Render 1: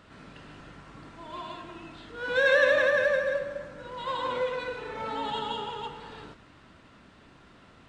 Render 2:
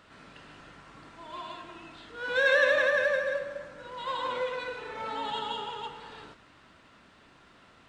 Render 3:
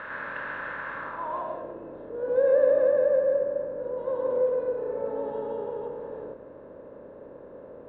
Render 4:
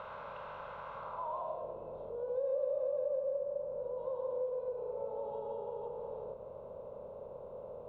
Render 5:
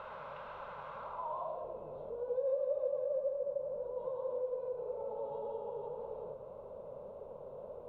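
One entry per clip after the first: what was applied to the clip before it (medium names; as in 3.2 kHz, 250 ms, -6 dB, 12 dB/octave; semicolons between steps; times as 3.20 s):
bass shelf 400 Hz -7.5 dB
spectral levelling over time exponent 0.6; low-pass sweep 1.6 kHz -> 470 Hz, 0.95–1.77 s
compression 2.5:1, threshold -38 dBFS, peak gain reduction 14.5 dB; static phaser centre 720 Hz, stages 4; trim +1 dB
flange 1.8 Hz, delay 2.1 ms, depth 5.9 ms, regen +47%; trim +3.5 dB; Vorbis 64 kbps 32 kHz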